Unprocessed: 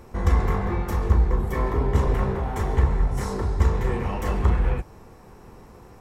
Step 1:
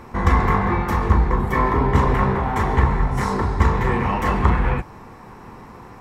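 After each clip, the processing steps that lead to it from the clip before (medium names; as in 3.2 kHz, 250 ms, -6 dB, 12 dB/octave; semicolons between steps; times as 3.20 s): ten-band graphic EQ 125 Hz +5 dB, 250 Hz +7 dB, 1 kHz +10 dB, 2 kHz +8 dB, 4 kHz +4 dB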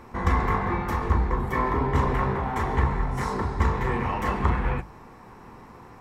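hum notches 50/100/150/200 Hz; trim -5.5 dB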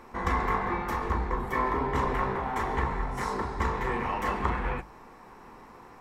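peaking EQ 100 Hz -9.5 dB 2 oct; trim -1.5 dB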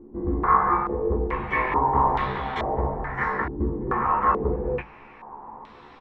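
doubling 14 ms -3.5 dB; step-sequenced low-pass 2.3 Hz 320–3600 Hz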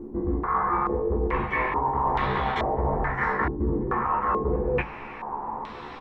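de-hum 269.8 Hz, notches 4; reverse; compression 10:1, threshold -30 dBFS, peak gain reduction 15.5 dB; reverse; trim +8.5 dB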